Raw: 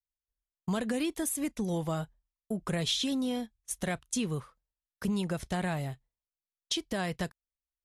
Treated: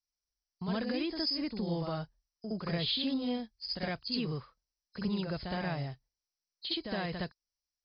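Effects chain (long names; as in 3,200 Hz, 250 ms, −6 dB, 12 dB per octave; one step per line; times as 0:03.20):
hearing-aid frequency compression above 3,900 Hz 4 to 1
backwards echo 65 ms −5 dB
level −3.5 dB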